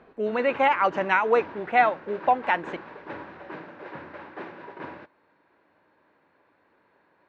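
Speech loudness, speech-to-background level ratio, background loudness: -23.5 LUFS, 17.5 dB, -41.0 LUFS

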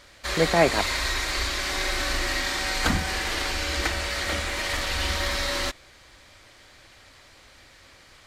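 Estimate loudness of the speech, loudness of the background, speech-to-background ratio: -23.5 LUFS, -26.0 LUFS, 2.5 dB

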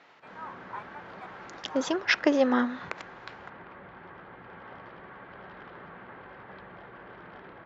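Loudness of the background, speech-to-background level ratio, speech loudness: -45.5 LUFS, 19.0 dB, -26.5 LUFS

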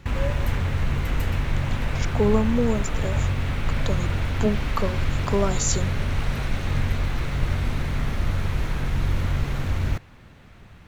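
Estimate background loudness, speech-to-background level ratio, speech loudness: -27.0 LUFS, 0.0 dB, -27.0 LUFS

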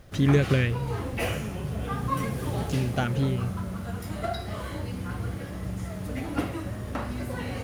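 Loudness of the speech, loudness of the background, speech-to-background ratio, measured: -27.5 LUFS, -33.0 LUFS, 5.5 dB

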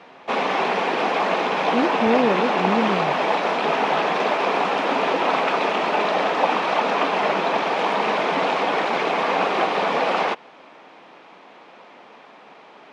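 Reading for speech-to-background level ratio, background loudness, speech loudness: -3.0 dB, -21.0 LUFS, -24.0 LUFS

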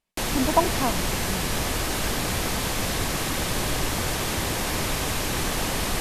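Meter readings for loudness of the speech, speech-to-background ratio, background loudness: -28.0 LUFS, -2.0 dB, -26.0 LUFS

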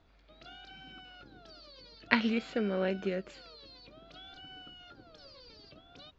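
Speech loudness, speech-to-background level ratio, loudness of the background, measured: -31.5 LUFS, 20.0 dB, -51.5 LUFS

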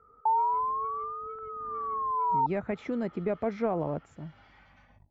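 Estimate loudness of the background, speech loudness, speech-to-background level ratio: -30.0 LUFS, -33.0 LUFS, -3.0 dB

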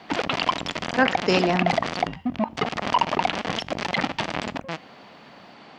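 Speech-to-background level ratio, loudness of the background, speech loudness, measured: 2.0 dB, -26.0 LUFS, -24.0 LUFS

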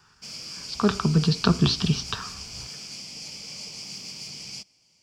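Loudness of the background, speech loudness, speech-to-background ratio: -36.0 LUFS, -24.0 LUFS, 12.0 dB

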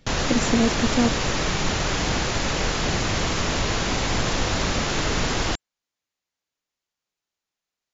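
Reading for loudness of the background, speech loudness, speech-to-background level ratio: -24.0 LUFS, -24.5 LUFS, -0.5 dB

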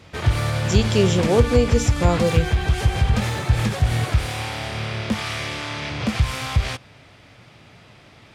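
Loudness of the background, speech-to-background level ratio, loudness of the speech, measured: -22.5 LUFS, 1.0 dB, -21.5 LUFS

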